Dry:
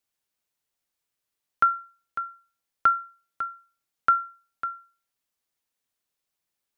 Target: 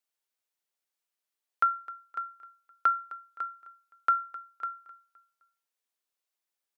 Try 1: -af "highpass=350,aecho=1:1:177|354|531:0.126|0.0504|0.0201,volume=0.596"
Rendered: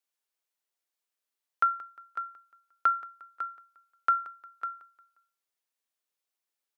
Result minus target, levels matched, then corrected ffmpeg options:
echo 82 ms early
-af "highpass=350,aecho=1:1:259|518|777:0.126|0.0504|0.0201,volume=0.596"

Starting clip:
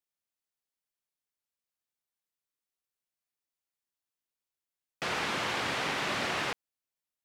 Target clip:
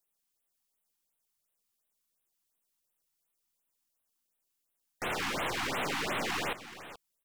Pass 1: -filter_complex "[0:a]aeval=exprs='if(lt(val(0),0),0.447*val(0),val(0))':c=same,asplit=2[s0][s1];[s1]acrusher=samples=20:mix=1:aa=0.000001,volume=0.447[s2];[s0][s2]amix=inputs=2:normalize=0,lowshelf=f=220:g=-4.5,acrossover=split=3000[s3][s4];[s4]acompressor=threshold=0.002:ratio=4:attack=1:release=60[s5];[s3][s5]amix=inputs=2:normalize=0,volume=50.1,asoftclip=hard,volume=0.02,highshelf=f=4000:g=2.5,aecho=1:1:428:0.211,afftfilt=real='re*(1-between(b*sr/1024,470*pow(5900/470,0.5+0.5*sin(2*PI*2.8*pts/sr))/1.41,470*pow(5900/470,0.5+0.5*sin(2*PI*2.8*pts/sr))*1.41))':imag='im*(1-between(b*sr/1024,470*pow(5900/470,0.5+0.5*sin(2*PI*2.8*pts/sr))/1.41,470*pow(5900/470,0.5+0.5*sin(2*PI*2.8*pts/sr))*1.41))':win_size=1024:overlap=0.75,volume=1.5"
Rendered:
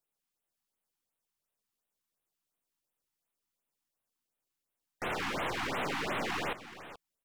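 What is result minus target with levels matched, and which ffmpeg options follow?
8 kHz band -4.5 dB
-filter_complex "[0:a]aeval=exprs='if(lt(val(0),0),0.447*val(0),val(0))':c=same,asplit=2[s0][s1];[s1]acrusher=samples=20:mix=1:aa=0.000001,volume=0.447[s2];[s0][s2]amix=inputs=2:normalize=0,lowshelf=f=220:g=-4.5,acrossover=split=3000[s3][s4];[s4]acompressor=threshold=0.002:ratio=4:attack=1:release=60[s5];[s3][s5]amix=inputs=2:normalize=0,volume=50.1,asoftclip=hard,volume=0.02,highshelf=f=4000:g=10.5,aecho=1:1:428:0.211,afftfilt=real='re*(1-between(b*sr/1024,470*pow(5900/470,0.5+0.5*sin(2*PI*2.8*pts/sr))/1.41,470*pow(5900/470,0.5+0.5*sin(2*PI*2.8*pts/sr))*1.41))':imag='im*(1-between(b*sr/1024,470*pow(5900/470,0.5+0.5*sin(2*PI*2.8*pts/sr))/1.41,470*pow(5900/470,0.5+0.5*sin(2*PI*2.8*pts/sr))*1.41))':win_size=1024:overlap=0.75,volume=1.5"

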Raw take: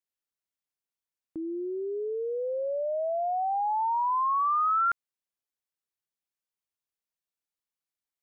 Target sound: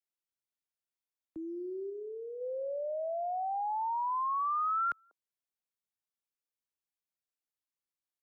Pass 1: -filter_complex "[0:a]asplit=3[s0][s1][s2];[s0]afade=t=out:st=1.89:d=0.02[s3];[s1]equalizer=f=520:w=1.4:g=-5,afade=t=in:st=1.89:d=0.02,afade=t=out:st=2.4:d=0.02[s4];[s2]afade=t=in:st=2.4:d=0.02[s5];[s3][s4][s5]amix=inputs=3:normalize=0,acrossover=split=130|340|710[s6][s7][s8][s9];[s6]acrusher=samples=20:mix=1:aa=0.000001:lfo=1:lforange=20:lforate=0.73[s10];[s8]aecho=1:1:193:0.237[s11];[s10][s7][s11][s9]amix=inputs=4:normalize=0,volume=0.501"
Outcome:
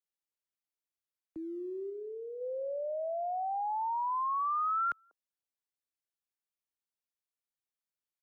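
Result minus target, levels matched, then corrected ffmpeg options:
decimation with a swept rate: distortion +12 dB
-filter_complex "[0:a]asplit=3[s0][s1][s2];[s0]afade=t=out:st=1.89:d=0.02[s3];[s1]equalizer=f=520:w=1.4:g=-5,afade=t=in:st=1.89:d=0.02,afade=t=out:st=2.4:d=0.02[s4];[s2]afade=t=in:st=2.4:d=0.02[s5];[s3][s4][s5]amix=inputs=3:normalize=0,acrossover=split=130|340|710[s6][s7][s8][s9];[s6]acrusher=samples=6:mix=1:aa=0.000001:lfo=1:lforange=6:lforate=0.73[s10];[s8]aecho=1:1:193:0.237[s11];[s10][s7][s11][s9]amix=inputs=4:normalize=0,volume=0.501"

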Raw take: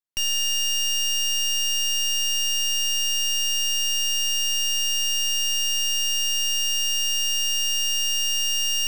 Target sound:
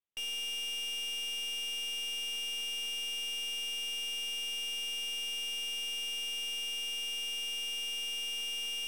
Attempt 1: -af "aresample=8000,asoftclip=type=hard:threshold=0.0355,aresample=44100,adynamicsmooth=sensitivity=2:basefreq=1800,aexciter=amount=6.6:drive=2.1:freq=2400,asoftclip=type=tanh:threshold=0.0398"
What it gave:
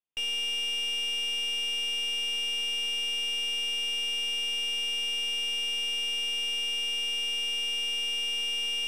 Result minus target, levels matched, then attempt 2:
saturation: distortion -4 dB
-af "aresample=8000,asoftclip=type=hard:threshold=0.0355,aresample=44100,adynamicsmooth=sensitivity=2:basefreq=1800,aexciter=amount=6.6:drive=2.1:freq=2400,asoftclip=type=tanh:threshold=0.0158"

